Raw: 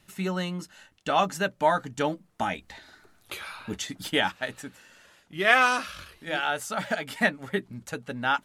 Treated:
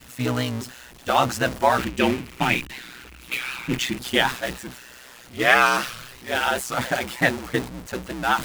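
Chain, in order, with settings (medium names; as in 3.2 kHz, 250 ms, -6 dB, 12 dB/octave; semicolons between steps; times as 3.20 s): jump at every zero crossing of -26.5 dBFS; expander -24 dBFS; 1.78–3.99 s: fifteen-band graphic EQ 250 Hz +9 dB, 630 Hz -5 dB, 2.5 kHz +11 dB; ring modulator 62 Hz; warped record 78 rpm, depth 100 cents; trim +5 dB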